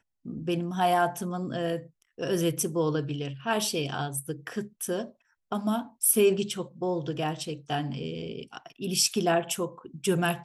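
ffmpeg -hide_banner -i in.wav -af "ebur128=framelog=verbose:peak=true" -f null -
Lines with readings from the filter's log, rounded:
Integrated loudness:
  I:         -28.7 LUFS
  Threshold: -38.9 LUFS
Loudness range:
  LRA:         2.2 LU
  Threshold: -49.1 LUFS
  LRA low:   -30.3 LUFS
  LRA high:  -28.1 LUFS
True peak:
  Peak:       -8.8 dBFS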